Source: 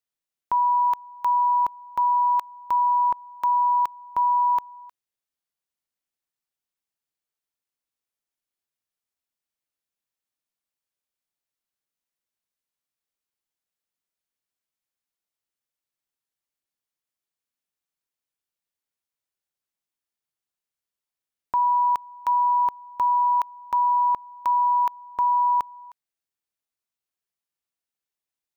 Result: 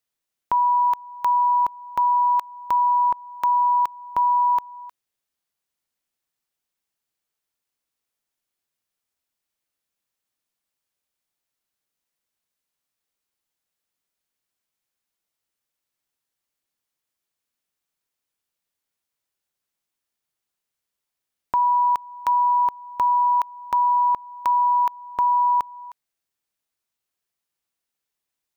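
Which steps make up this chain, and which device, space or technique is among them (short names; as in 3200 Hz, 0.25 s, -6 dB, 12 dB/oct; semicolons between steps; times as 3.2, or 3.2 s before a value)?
parallel compression (in parallel at -1 dB: compressor, threshold -33 dBFS, peak gain reduction 12.5 dB)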